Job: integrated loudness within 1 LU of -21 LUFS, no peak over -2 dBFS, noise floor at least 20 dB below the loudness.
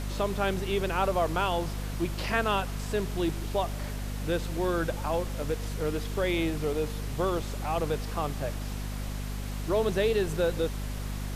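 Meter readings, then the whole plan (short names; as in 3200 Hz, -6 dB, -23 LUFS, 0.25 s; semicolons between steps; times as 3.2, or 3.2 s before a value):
hum 50 Hz; harmonics up to 250 Hz; hum level -32 dBFS; noise floor -35 dBFS; noise floor target -51 dBFS; loudness -30.5 LUFS; peak -12.5 dBFS; loudness target -21.0 LUFS
-> de-hum 50 Hz, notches 5; noise print and reduce 16 dB; gain +9.5 dB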